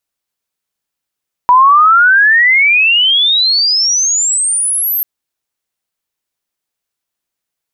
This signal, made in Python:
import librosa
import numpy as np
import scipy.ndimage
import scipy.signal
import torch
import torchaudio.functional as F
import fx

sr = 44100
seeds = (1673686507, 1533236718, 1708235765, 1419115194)

y = fx.chirp(sr, length_s=3.54, from_hz=970.0, to_hz=13000.0, law='logarithmic', from_db=-3.0, to_db=-12.0)